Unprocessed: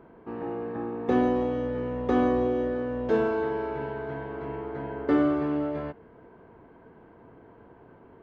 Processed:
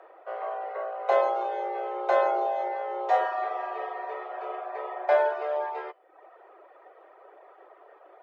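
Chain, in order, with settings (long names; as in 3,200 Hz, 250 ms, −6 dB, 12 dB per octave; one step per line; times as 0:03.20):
hum removal 180.1 Hz, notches 29
frequency shifter +300 Hz
reverb reduction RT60 0.7 s
level +1.5 dB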